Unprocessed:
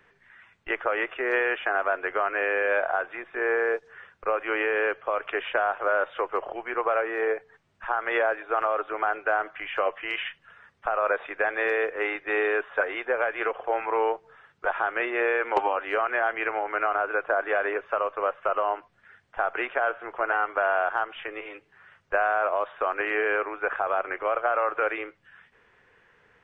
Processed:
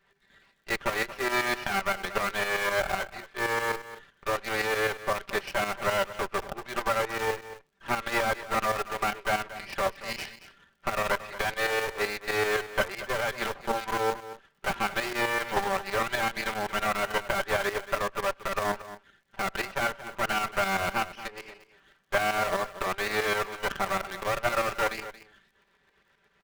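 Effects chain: comb filter that takes the minimum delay 5.1 ms; crackle 61 per s -54 dBFS; tremolo saw up 7.8 Hz, depth 60%; in parallel at -3.5 dB: bit crusher 5-bit; on the sum: delay 228 ms -14.5 dB; trim -2.5 dB

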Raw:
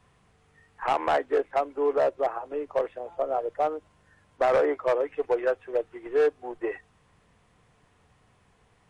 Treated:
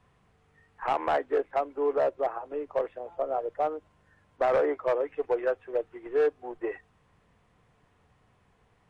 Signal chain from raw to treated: treble shelf 4 kHz -7.5 dB; trim -2 dB

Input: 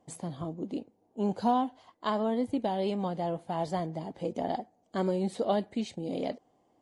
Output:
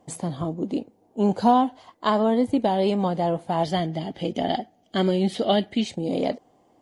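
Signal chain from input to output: 3.63–5.84 s: graphic EQ with 31 bands 500 Hz -6 dB, 1 kHz -9 dB, 2 kHz +4 dB, 3.15 kHz +11 dB, 5 kHz +3 dB, 8 kHz -6 dB; trim +8.5 dB

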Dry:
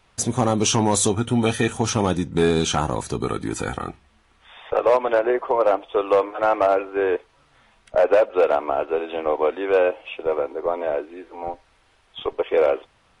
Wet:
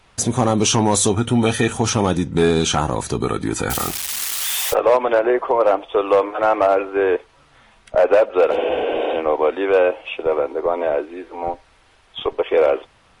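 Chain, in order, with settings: 3.70–4.74 s: zero-crossing glitches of -18 dBFS; in parallel at 0 dB: peak limiter -17.5 dBFS, peak gain reduction 8 dB; 8.54–9.12 s: on the sum: spectral replace 250–3600 Hz after; MP3 80 kbps 48 kHz

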